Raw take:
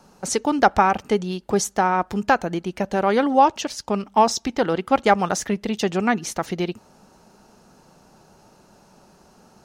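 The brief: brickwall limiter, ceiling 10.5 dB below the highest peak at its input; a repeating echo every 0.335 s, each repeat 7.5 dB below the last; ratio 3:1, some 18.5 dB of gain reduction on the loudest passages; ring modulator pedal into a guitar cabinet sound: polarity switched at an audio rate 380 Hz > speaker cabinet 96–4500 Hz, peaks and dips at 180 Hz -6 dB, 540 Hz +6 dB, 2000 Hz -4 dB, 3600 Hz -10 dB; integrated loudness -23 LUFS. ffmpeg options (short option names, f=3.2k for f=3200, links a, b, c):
-af "acompressor=threshold=-37dB:ratio=3,alimiter=level_in=6.5dB:limit=-24dB:level=0:latency=1,volume=-6.5dB,aecho=1:1:335|670|1005|1340|1675:0.422|0.177|0.0744|0.0312|0.0131,aeval=exprs='val(0)*sgn(sin(2*PI*380*n/s))':c=same,highpass=96,equalizer=f=180:t=q:w=4:g=-6,equalizer=f=540:t=q:w=4:g=6,equalizer=f=2k:t=q:w=4:g=-4,equalizer=f=3.6k:t=q:w=4:g=-10,lowpass=f=4.5k:w=0.5412,lowpass=f=4.5k:w=1.3066,volume=17.5dB"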